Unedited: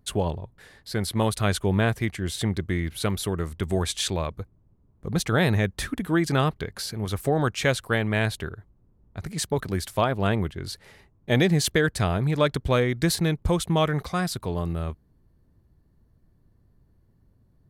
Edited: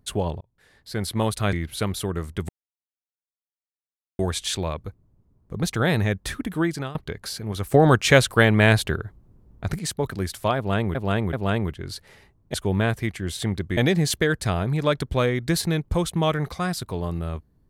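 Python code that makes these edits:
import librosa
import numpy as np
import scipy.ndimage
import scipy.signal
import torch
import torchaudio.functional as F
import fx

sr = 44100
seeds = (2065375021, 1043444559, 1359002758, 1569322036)

y = fx.edit(x, sr, fx.fade_in_span(start_s=0.41, length_s=0.62),
    fx.move(start_s=1.53, length_s=1.23, to_s=11.31),
    fx.insert_silence(at_s=3.72, length_s=1.7),
    fx.fade_out_to(start_s=6.14, length_s=0.34, floor_db=-20.5),
    fx.clip_gain(start_s=7.27, length_s=2.05, db=7.5),
    fx.repeat(start_s=10.1, length_s=0.38, count=3), tone=tone)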